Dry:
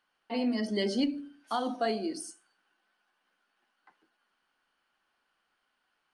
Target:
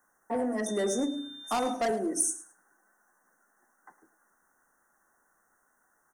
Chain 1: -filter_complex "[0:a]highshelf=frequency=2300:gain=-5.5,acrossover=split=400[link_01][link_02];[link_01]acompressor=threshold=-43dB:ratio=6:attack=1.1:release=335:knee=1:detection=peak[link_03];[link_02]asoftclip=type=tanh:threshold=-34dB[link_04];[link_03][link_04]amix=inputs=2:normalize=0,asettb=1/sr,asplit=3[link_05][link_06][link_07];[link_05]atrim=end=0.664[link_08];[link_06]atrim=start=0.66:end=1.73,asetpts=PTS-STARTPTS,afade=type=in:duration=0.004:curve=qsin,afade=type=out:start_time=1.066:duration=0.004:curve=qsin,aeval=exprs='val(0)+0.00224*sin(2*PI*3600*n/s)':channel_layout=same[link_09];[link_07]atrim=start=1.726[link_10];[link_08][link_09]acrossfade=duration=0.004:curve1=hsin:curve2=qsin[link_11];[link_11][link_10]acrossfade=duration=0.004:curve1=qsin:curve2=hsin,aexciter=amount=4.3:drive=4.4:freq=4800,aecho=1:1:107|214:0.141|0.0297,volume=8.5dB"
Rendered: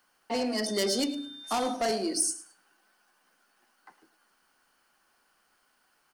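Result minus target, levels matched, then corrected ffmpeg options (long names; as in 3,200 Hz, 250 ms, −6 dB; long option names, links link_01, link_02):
4,000 Hz band +7.5 dB
-filter_complex "[0:a]asuperstop=centerf=3400:order=20:qfactor=0.89,highshelf=frequency=2300:gain=-5.5,acrossover=split=400[link_01][link_02];[link_01]acompressor=threshold=-43dB:ratio=6:attack=1.1:release=335:knee=1:detection=peak[link_03];[link_02]asoftclip=type=tanh:threshold=-34dB[link_04];[link_03][link_04]amix=inputs=2:normalize=0,asettb=1/sr,asplit=3[link_05][link_06][link_07];[link_05]atrim=end=0.664[link_08];[link_06]atrim=start=0.66:end=1.73,asetpts=PTS-STARTPTS,afade=type=in:duration=0.004:curve=qsin,afade=type=out:start_time=1.066:duration=0.004:curve=qsin,aeval=exprs='val(0)+0.00224*sin(2*PI*3600*n/s)':channel_layout=same[link_09];[link_07]atrim=start=1.726[link_10];[link_08][link_09]acrossfade=duration=0.004:curve1=hsin:curve2=qsin[link_11];[link_11][link_10]acrossfade=duration=0.004:curve1=qsin:curve2=hsin,aexciter=amount=4.3:drive=4.4:freq=4800,aecho=1:1:107|214:0.141|0.0297,volume=8.5dB"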